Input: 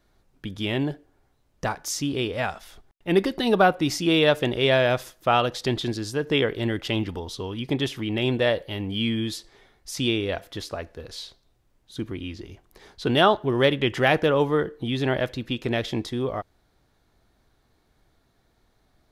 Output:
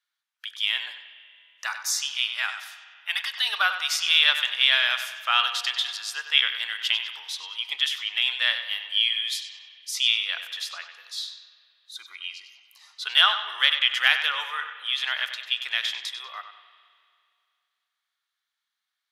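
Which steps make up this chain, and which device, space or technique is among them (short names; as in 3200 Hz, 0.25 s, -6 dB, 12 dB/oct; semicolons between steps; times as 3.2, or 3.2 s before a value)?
headphones lying on a table (HPF 1300 Hz 24 dB/oct; bell 3200 Hz +6 dB 0.37 oct); 2.13–3.35 steep high-pass 620 Hz 36 dB/oct; spectral noise reduction 15 dB; analogue delay 96 ms, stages 4096, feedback 39%, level -10 dB; spring tank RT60 2.4 s, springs 32/36 ms, chirp 35 ms, DRR 13 dB; gain +3.5 dB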